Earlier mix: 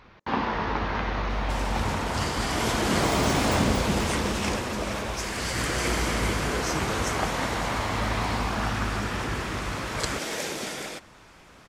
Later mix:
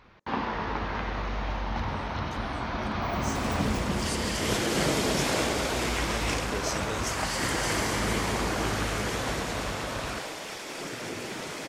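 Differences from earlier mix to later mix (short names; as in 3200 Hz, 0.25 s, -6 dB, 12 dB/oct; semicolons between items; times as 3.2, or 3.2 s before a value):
first sound -3.5 dB; second sound: entry +1.85 s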